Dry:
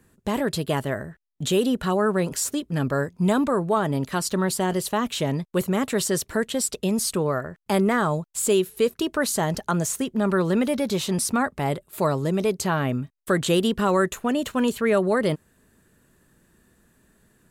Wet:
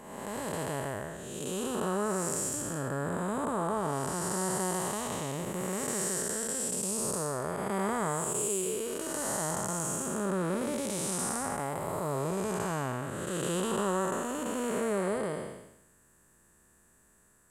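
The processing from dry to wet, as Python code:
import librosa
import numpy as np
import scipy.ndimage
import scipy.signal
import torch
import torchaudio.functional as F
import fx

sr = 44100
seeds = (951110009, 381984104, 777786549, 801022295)

y = fx.spec_blur(x, sr, span_ms=454.0)
y = fx.graphic_eq(y, sr, hz=(125, 250, 1000, 4000, 8000), db=(-3, -4, 5, -6, 11))
y = y * 10.0 ** (-3.0 / 20.0)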